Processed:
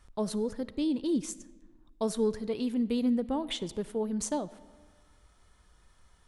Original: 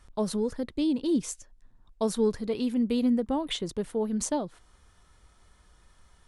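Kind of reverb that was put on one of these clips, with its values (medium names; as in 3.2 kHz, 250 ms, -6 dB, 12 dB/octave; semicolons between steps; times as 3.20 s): algorithmic reverb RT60 1.5 s, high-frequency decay 0.65×, pre-delay 15 ms, DRR 17.5 dB; trim -3 dB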